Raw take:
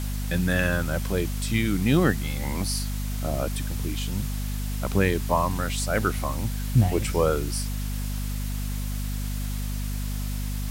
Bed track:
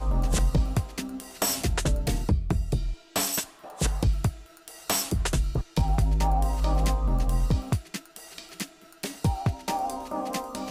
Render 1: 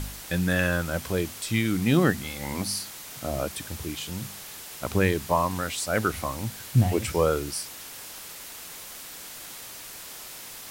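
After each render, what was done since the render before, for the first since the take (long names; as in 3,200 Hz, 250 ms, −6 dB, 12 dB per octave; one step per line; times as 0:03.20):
hum removal 50 Hz, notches 5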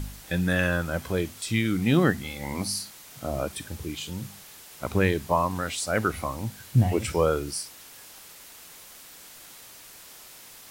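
noise reduction from a noise print 6 dB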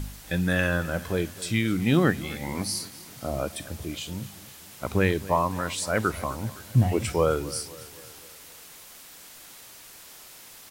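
repeating echo 257 ms, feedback 54%, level −18.5 dB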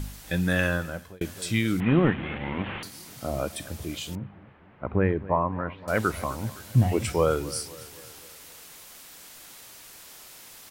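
0:00.67–0:01.21: fade out
0:01.80–0:02.83: linear delta modulator 16 kbit/s, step −29.5 dBFS
0:04.15–0:05.88: Bessel low-pass filter 1,400 Hz, order 6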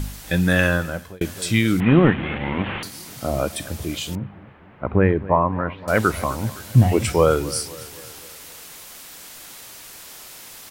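level +6.5 dB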